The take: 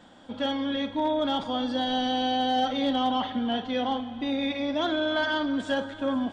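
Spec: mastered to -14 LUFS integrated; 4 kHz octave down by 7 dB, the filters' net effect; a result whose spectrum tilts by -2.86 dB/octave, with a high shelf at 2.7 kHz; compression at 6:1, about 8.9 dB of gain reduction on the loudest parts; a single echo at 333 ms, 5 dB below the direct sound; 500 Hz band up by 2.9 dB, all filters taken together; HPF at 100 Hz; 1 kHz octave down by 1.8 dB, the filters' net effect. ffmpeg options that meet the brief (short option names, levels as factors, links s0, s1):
-af "highpass=100,equalizer=f=500:t=o:g=5,equalizer=f=1000:t=o:g=-4.5,highshelf=f=2700:g=-4,equalizer=f=4000:t=o:g=-6,acompressor=threshold=0.0282:ratio=6,aecho=1:1:333:0.562,volume=9.44"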